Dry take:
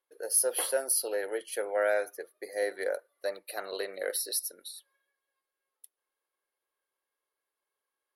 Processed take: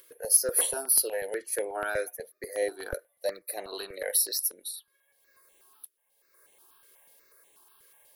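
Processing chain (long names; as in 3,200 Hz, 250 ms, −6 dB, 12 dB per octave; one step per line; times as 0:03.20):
upward compression, threshold −47 dBFS
high-shelf EQ 9,400 Hz +9.5 dB
step-sequenced phaser 8.2 Hz 220–4,900 Hz
level +3.5 dB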